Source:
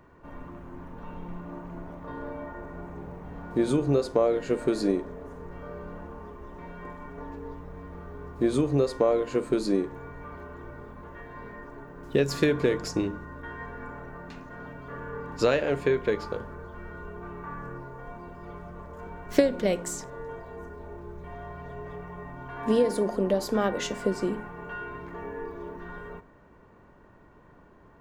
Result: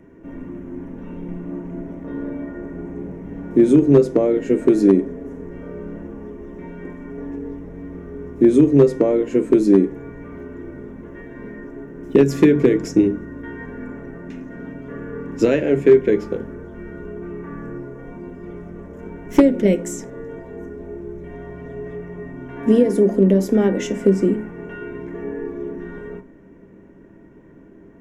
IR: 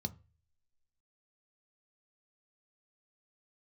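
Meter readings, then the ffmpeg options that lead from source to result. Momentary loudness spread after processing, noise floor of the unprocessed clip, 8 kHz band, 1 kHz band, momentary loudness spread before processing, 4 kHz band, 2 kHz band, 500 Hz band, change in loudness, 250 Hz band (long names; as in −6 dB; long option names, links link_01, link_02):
21 LU, −55 dBFS, +2.5 dB, 0.0 dB, 19 LU, −1.5 dB, +2.5 dB, +9.0 dB, +11.5 dB, +12.5 dB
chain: -filter_complex "[0:a]asplit=2[link_01][link_02];[1:a]atrim=start_sample=2205,asetrate=79380,aresample=44100,lowshelf=frequency=130:gain=-10.5[link_03];[link_02][link_03]afir=irnorm=-1:irlink=0,volume=5.5dB[link_04];[link_01][link_04]amix=inputs=2:normalize=0,asoftclip=type=hard:threshold=-6dB,volume=2dB"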